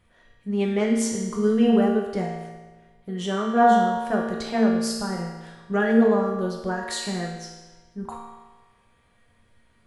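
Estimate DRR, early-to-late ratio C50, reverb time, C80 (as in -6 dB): -3.0 dB, 1.5 dB, 1.3 s, 4.0 dB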